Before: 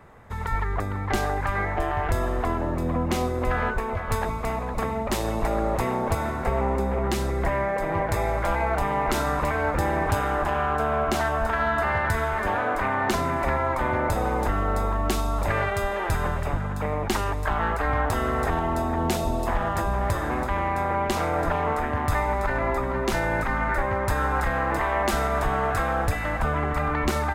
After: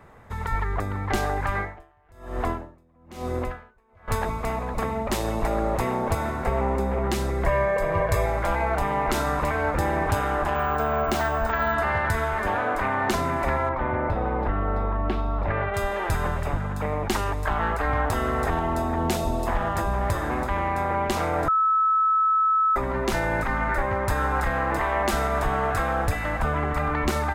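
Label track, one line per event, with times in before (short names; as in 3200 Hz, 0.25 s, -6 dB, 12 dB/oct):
1.540000	4.080000	dB-linear tremolo 1.1 Hz, depth 36 dB
7.460000	8.260000	comb 1.8 ms
10.550000	11.740000	careless resampling rate divided by 2×, down filtered, up hold
13.690000	15.740000	air absorption 390 m
21.480000	22.760000	bleep 1300 Hz -17.5 dBFS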